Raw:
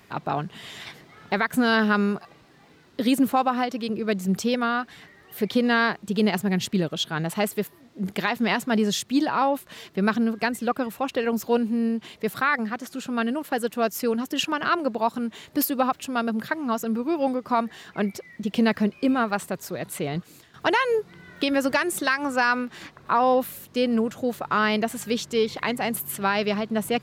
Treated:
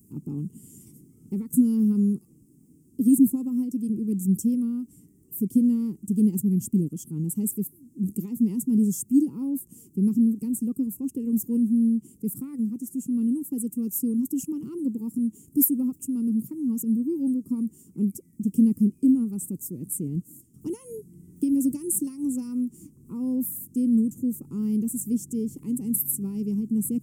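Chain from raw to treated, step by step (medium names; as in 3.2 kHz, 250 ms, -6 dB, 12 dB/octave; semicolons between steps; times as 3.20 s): elliptic band-stop 280–8400 Hz, stop band 40 dB; bass shelf 190 Hz -7.5 dB; trim +6.5 dB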